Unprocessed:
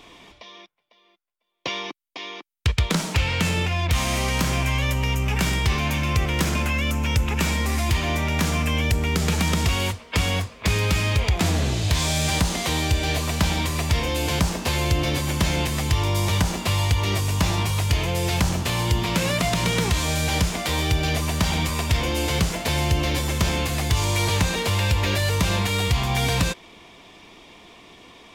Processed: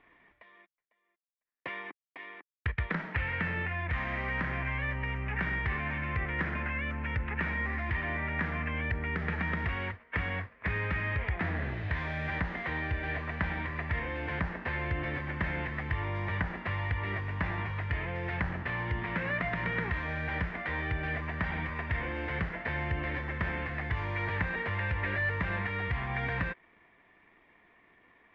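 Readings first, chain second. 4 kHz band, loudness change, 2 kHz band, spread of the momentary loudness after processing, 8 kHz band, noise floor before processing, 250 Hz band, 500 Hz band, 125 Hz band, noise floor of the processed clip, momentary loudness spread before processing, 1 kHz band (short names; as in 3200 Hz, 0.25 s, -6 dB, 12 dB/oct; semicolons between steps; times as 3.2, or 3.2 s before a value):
-22.5 dB, -10.5 dB, -4.5 dB, 3 LU, under -40 dB, -57 dBFS, -12.0 dB, -11.5 dB, -12.0 dB, -75 dBFS, 3 LU, -9.5 dB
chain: G.711 law mismatch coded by A; ladder low-pass 2000 Hz, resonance 70%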